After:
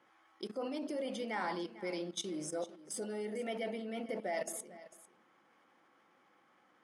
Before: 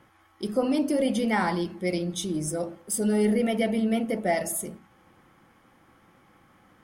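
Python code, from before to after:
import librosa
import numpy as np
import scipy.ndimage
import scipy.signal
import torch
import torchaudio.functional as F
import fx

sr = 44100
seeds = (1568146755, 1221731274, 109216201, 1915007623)

p1 = fx.level_steps(x, sr, step_db=16)
p2 = fx.bandpass_edges(p1, sr, low_hz=330.0, high_hz=7000.0)
p3 = p2 + fx.echo_single(p2, sr, ms=448, db=-17.0, dry=0)
y = F.gain(torch.from_numpy(p3), -3.0).numpy()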